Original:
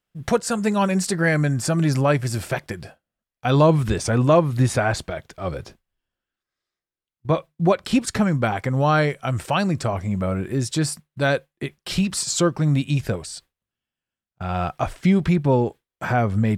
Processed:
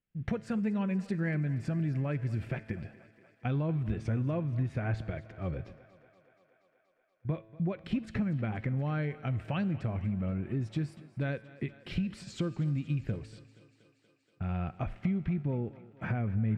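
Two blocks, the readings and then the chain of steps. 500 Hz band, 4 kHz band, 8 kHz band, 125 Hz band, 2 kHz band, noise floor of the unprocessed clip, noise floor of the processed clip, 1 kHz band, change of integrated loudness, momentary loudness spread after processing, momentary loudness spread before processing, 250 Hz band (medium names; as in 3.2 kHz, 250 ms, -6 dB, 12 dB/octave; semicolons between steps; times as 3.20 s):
-17.5 dB, -20.5 dB, under -30 dB, -9.5 dB, -16.0 dB, under -85 dBFS, -71 dBFS, -20.0 dB, -12.5 dB, 8 LU, 13 LU, -11.0 dB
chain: FFT filter 210 Hz 0 dB, 970 Hz -15 dB, 1.8 kHz -14 dB, 8.7 kHz -29 dB; compression 4:1, threshold -27 dBFS, peak gain reduction 11.5 dB; peaking EQ 2.4 kHz +10.5 dB 1.2 oct; feedback comb 110 Hz, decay 1.3 s, harmonics all, mix 50%; on a send: thinning echo 238 ms, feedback 75%, high-pass 210 Hz, level -18 dB; on the sum: trim +3 dB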